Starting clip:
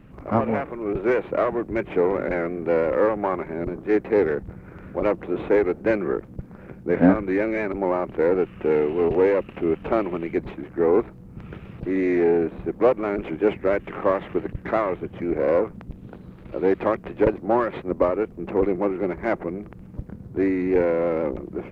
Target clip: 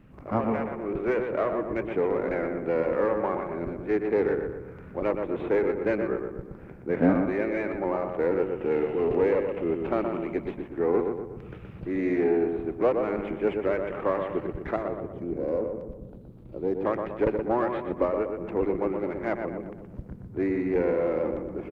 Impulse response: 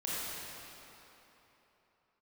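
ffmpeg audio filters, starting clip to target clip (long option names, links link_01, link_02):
-filter_complex "[0:a]asettb=1/sr,asplit=3[link_01][link_02][link_03];[link_01]atrim=end=14.764[link_04];[link_02]atrim=start=14.76:end=16.85,asetpts=PTS-STARTPTS,afade=type=in:duration=0.004:curve=qsin,afade=type=out:start_time=2.086:duration=0.004:curve=qsin,equalizer=frequency=1900:width=0.59:gain=-14.5[link_05];[link_03]atrim=start=16.846[link_06];[link_04][link_05]acrossfade=duration=0.004:curve1=hsin:curve2=qsin[link_07];[link_07][link_06]acrossfade=duration=0.004:curve1=qsin:curve2=hsin,asplit=2[link_08][link_09];[link_09]adelay=121,lowpass=frequency=2200:poles=1,volume=-5dB,asplit=2[link_10][link_11];[link_11]adelay=121,lowpass=frequency=2200:poles=1,volume=0.5,asplit=2[link_12][link_13];[link_13]adelay=121,lowpass=frequency=2200:poles=1,volume=0.5,asplit=2[link_14][link_15];[link_15]adelay=121,lowpass=frequency=2200:poles=1,volume=0.5,asplit=2[link_16][link_17];[link_17]adelay=121,lowpass=frequency=2200:poles=1,volume=0.5,asplit=2[link_18][link_19];[link_19]adelay=121,lowpass=frequency=2200:poles=1,volume=0.5[link_20];[link_08][link_10][link_12][link_14][link_16][link_18][link_20]amix=inputs=7:normalize=0,volume=-5.5dB"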